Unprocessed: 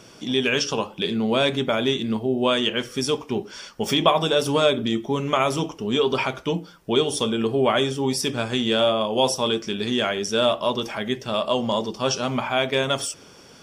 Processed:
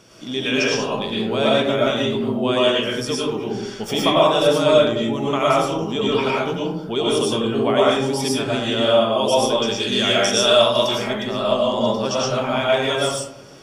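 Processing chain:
0:09.58–0:10.96: parametric band 7,400 Hz +9.5 dB 3 octaves
convolution reverb RT60 0.85 s, pre-delay 70 ms, DRR −5.5 dB
level −3.5 dB

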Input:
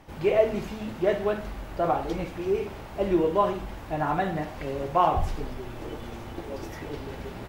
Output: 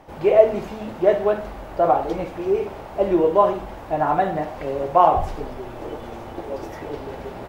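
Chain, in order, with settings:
parametric band 650 Hz +9.5 dB 2 octaves
level −1 dB

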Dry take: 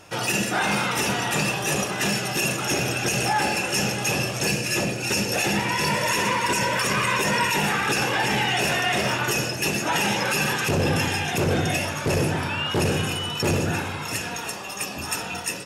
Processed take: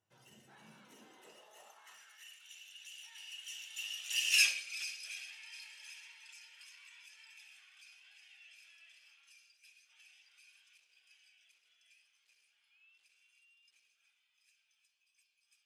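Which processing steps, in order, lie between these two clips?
source passing by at 0:04.38, 24 m/s, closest 1.6 metres
high-pass filter sweep 91 Hz → 2,900 Hz, 0:00.37–0:02.49
level −2.5 dB

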